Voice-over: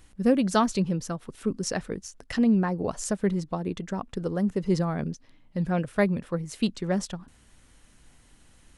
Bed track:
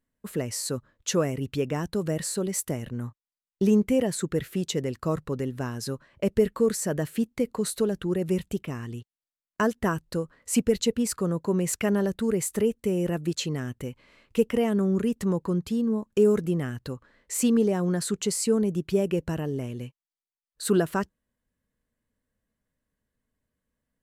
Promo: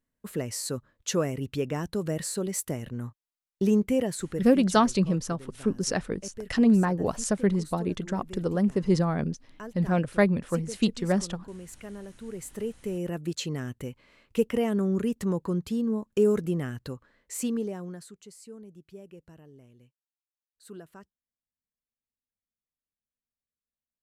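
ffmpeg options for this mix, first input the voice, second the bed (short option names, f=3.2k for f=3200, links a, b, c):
-filter_complex "[0:a]adelay=4200,volume=1.5dB[a];[1:a]volume=13dB,afade=t=out:st=3.98:d=0.87:silence=0.177828,afade=t=in:st=12.15:d=1.46:silence=0.177828,afade=t=out:st=16.83:d=1.32:silence=0.1[b];[a][b]amix=inputs=2:normalize=0"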